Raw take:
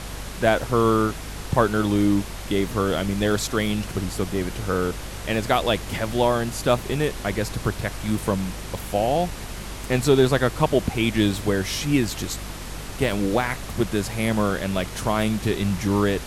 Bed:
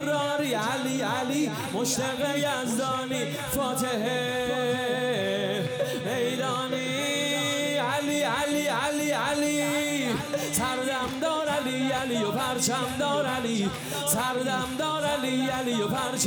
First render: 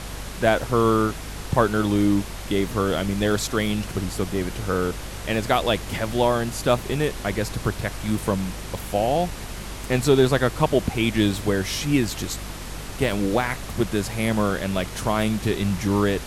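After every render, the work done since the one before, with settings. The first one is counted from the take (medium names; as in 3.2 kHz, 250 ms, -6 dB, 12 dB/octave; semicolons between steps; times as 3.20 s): no audible change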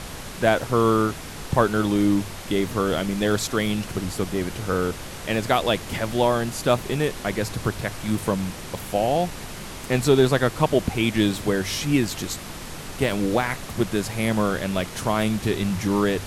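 de-hum 50 Hz, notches 2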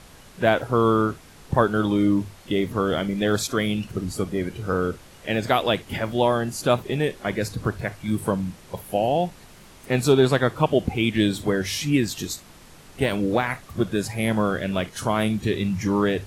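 noise print and reduce 12 dB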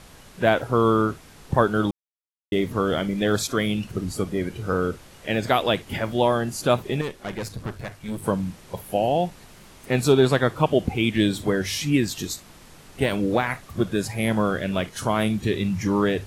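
1.91–2.52 s: mute; 7.01–8.24 s: valve stage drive 24 dB, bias 0.7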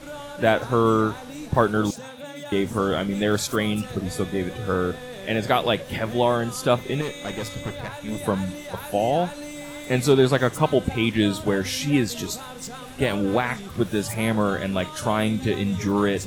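add bed -10.5 dB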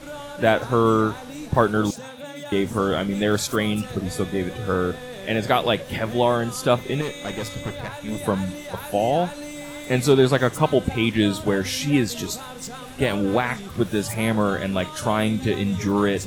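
trim +1 dB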